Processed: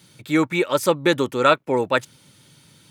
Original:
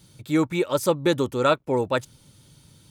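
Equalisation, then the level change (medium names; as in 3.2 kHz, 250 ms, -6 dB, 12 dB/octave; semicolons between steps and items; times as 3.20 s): high-pass 140 Hz 12 dB/octave; peaking EQ 2 kHz +6.5 dB 1.4 oct; +2.0 dB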